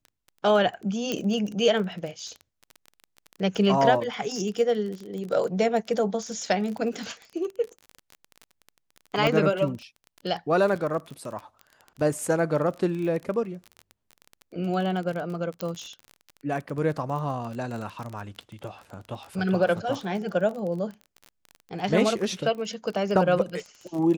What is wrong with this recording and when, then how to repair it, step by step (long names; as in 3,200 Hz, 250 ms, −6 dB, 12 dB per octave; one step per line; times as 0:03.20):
surface crackle 26 per second −32 dBFS
0:01.12: click −13 dBFS
0:09.27: click −12 dBFS
0:15.61: click −15 dBFS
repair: click removal